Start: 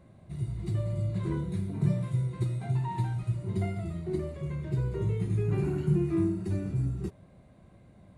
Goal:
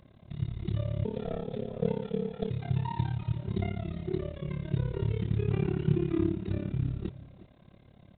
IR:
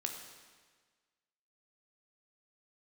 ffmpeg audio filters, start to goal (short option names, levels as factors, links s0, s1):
-filter_complex "[0:a]tremolo=f=35:d=0.947,acrossover=split=3100[s0][s1];[s1]crystalizer=i=8:c=0[s2];[s0][s2]amix=inputs=2:normalize=0,asettb=1/sr,asplit=3[s3][s4][s5];[s3]atrim=end=1.054[s6];[s4]atrim=start=1.05:end=2.5,asetpts=PTS-STARTPTS,afade=t=in:d=0.004:c=qsin,afade=t=out:st=1.446:d=0.004:c=qsin,aeval=exprs='val(0)*sin(2*PI*320*n/s)':c=same[s7];[s5]atrim=start=2.496[s8];[s6][s7]acrossfade=d=0.004:c1=hsin:c2=qsin[s9];[s9][s8]acrossfade=d=0.004:c1=qsin:c2=hsin,acrusher=bits=6:mode=log:mix=0:aa=0.000001,asplit=2[s10][s11];[s11]aecho=0:1:362:0.126[s12];[s10][s12]amix=inputs=2:normalize=0,aresample=8000,aresample=44100,volume=1.41"